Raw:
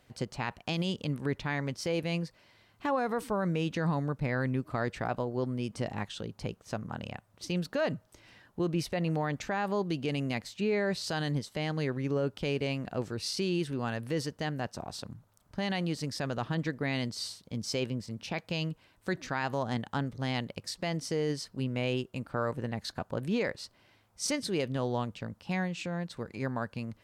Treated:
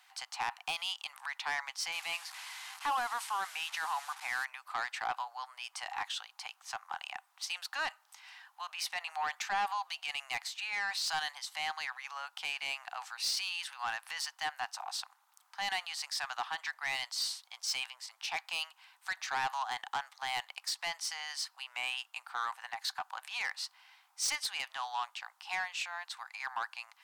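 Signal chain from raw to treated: 1.92–4.45 delta modulation 64 kbps, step -43.5 dBFS; Chebyshev high-pass 770 Hz, order 6; soft clip -32.5 dBFS, distortion -12 dB; gain +5.5 dB

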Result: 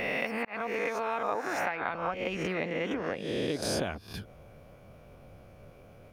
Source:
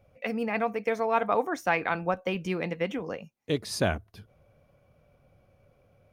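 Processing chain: spectral swells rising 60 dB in 1.05 s; 1.68–3.62 high shelf 4300 Hz -8 dB; harmonic-percussive split percussive +9 dB; 0.45–1.16 fade in equal-power; compressor 6:1, threshold -33 dBFS, peak gain reduction 19.5 dB; gain +3.5 dB

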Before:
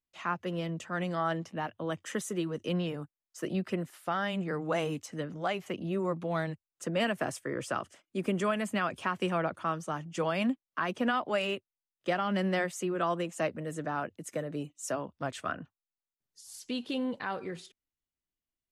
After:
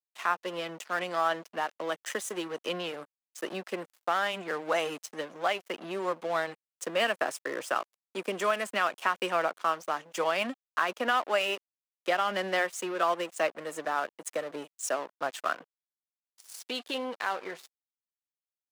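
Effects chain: in parallel at -2 dB: compressor, threshold -39 dBFS, peak gain reduction 14 dB; on the sum: crossover distortion -43 dBFS; HPF 500 Hz 12 dB/oct; gain +4 dB

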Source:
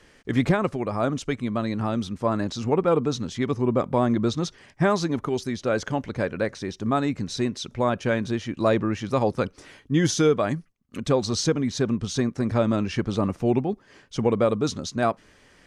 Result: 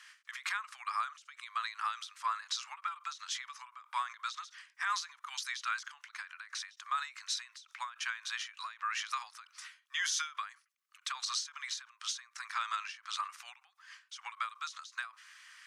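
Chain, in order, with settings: steep high-pass 1100 Hz 48 dB/oct; limiter -26.5 dBFS, peak gain reduction 11.5 dB; ending taper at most 170 dB/s; gain +2.5 dB

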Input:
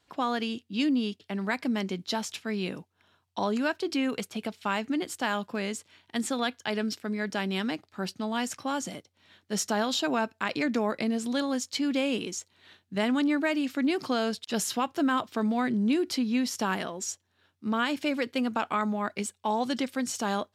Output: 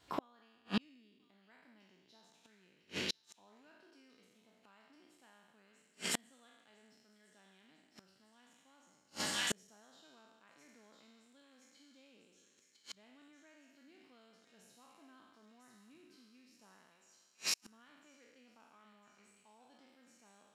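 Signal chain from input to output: spectral trails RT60 1.57 s; thin delay 1.004 s, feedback 54%, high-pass 2200 Hz, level -4 dB; flipped gate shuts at -22 dBFS, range -40 dB; gain +1 dB

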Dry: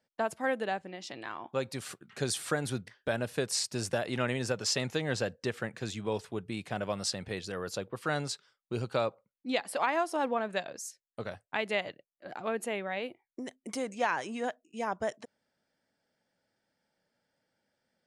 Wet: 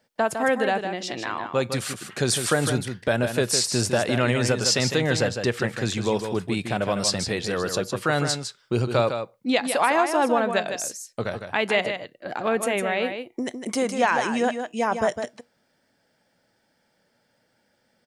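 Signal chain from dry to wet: in parallel at -1 dB: limiter -27 dBFS, peak gain reduction 11 dB; on the sum: resonator 120 Hz, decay 0.23 s, mix 30%; echo 0.156 s -7.5 dB; gain +8 dB

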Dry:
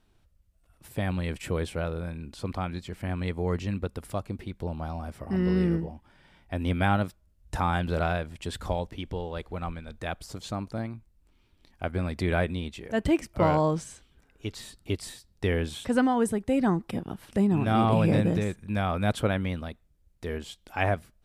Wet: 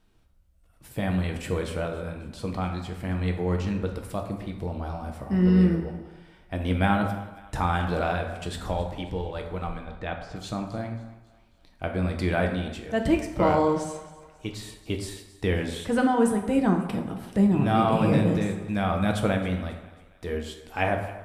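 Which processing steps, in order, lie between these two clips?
9.83–10.36 LPF 3400 Hz 12 dB/oct; on a send: thinning echo 0.271 s, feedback 48%, high-pass 420 Hz, level -18.5 dB; on the sum: plate-style reverb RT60 0.97 s, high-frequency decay 0.6×, DRR 3 dB

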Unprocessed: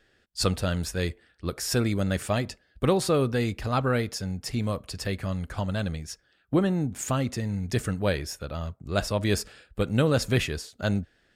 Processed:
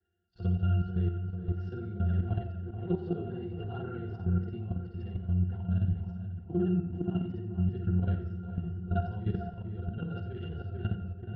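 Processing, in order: short-time reversal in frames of 0.132 s; on a send: darkening echo 0.442 s, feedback 58%, low-pass 2200 Hz, level -6 dB; on the sum: dynamic EQ 110 Hz, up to +5 dB, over -43 dBFS, Q 1.2; octave resonator F, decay 0.15 s; level quantiser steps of 11 dB; LPF 4400 Hz 24 dB/oct; de-hum 66.38 Hz, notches 31; warbling echo 87 ms, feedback 48%, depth 64 cents, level -12.5 dB; gain +7 dB

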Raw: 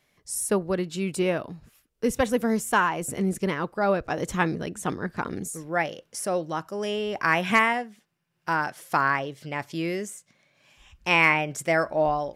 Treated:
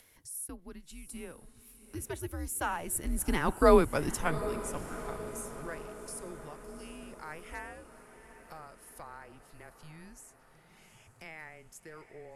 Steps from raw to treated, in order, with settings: Doppler pass-by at 3.66, 15 m/s, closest 2.7 m; bell 11000 Hz +14 dB 0.67 oct; upward compressor, threshold -46 dBFS; on a send: diffused feedback echo 0.764 s, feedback 59%, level -13 dB; on the sum: frequency shift -160 Hz; gain +3.5 dB

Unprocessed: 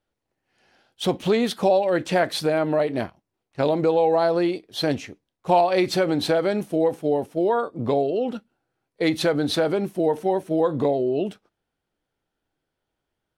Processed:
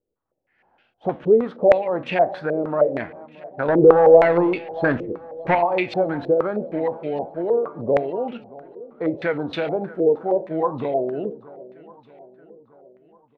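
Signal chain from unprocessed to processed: 3.68–5.55 sample leveller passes 2; flange 1.2 Hz, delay 7.8 ms, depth 7.4 ms, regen +82%; feedback echo 0.626 s, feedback 58%, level -20 dB; on a send at -19 dB: reverb RT60 1.1 s, pre-delay 3 ms; on the sum: stepped low-pass 6.4 Hz 440–2600 Hz

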